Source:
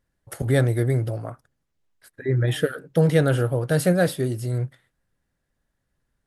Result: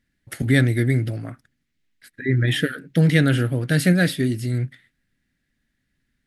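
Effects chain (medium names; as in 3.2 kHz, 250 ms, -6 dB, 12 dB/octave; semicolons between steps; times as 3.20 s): graphic EQ 250/500/1000/2000/4000 Hz +10/-7/-9/+11/+5 dB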